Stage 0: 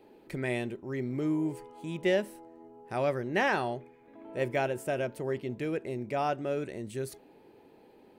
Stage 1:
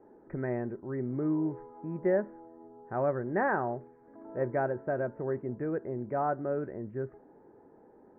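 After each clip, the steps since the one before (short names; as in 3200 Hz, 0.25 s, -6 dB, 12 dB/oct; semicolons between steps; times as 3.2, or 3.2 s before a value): steep low-pass 1700 Hz 48 dB/oct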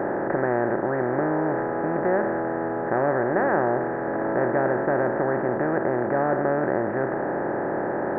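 per-bin compression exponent 0.2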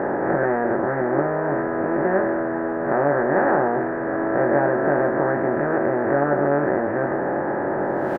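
spectral swells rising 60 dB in 0.74 s; doubler 21 ms -5 dB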